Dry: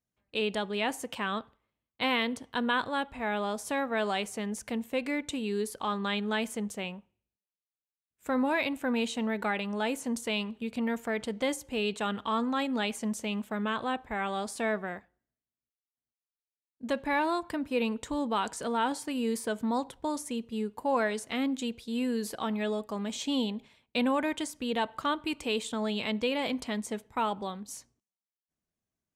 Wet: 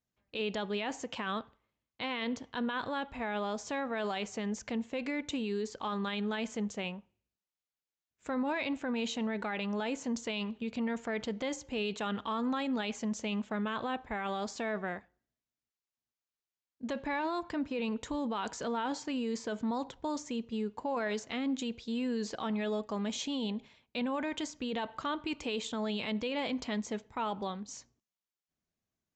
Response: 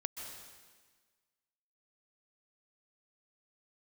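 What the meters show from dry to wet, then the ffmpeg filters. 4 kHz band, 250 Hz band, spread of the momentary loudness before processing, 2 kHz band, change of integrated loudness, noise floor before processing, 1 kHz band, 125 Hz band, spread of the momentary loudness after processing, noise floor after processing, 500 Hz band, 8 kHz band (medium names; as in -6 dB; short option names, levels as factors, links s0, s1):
-4.5 dB, -3.0 dB, 6 LU, -5.0 dB, -4.0 dB, under -85 dBFS, -5.0 dB, -1.5 dB, 4 LU, under -85 dBFS, -4.0 dB, -4.5 dB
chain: -af "alimiter=level_in=1.33:limit=0.0631:level=0:latency=1:release=18,volume=0.75,asoftclip=type=tanh:threshold=0.178,aresample=16000,aresample=44100"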